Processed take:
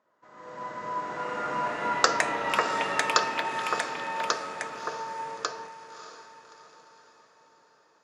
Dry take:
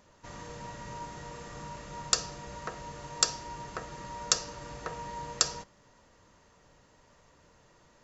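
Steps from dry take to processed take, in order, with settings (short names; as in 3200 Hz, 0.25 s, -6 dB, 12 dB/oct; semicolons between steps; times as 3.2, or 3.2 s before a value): Doppler pass-by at 2.23, 17 m/s, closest 9.4 m; resonant high shelf 2000 Hz -7 dB, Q 1.5; AGC gain up to 15 dB; in parallel at -10 dB: short-mantissa float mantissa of 2-bit; on the sum: echoes that change speed 0.758 s, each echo +6 st, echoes 3; BPF 320–4600 Hz; on a send: diffused feedback echo 0.617 s, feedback 46%, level -11.5 dB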